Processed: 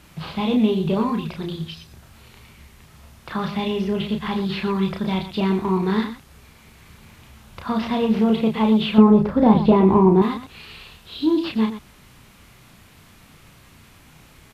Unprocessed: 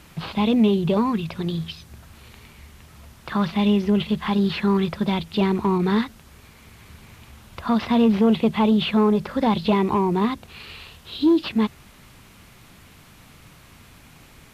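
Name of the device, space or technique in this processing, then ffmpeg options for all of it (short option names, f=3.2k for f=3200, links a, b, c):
slapback doubling: -filter_complex "[0:a]asplit=3[a][b][c];[b]adelay=32,volume=-4dB[d];[c]adelay=119,volume=-10.5dB[e];[a][d][e]amix=inputs=3:normalize=0,asettb=1/sr,asplit=3[f][g][h];[f]atrim=end=8.984[i];[g]atrim=start=8.98:end=10.22,asetpts=PTS-STARTPTS,afade=t=in:d=0.004:c=qsin,afade=t=out:st=1.236:d=0.004:c=qsin,tiltshelf=f=1.4k:g=8.5[j];[h]atrim=start=10.216[k];[i][j]acrossfade=d=0.004:c1=hsin:c2=qsin[l];[l][k]acrossfade=d=0.004:c1=qsin:c2=hsin,volume=-2.5dB"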